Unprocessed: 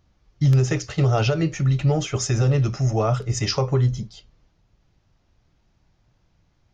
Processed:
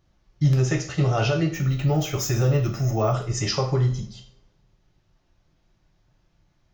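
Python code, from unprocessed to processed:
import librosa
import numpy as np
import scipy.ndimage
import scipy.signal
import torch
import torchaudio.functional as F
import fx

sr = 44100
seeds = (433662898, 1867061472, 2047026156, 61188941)

y = fx.rev_double_slope(x, sr, seeds[0], early_s=0.45, late_s=1.6, knee_db=-27, drr_db=1.5)
y = fx.resample_bad(y, sr, factor=2, down='filtered', up='hold', at=(1.54, 3.13))
y = F.gain(torch.from_numpy(y), -3.0).numpy()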